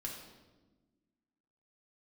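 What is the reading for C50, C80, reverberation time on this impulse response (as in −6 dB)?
4.0 dB, 6.0 dB, 1.2 s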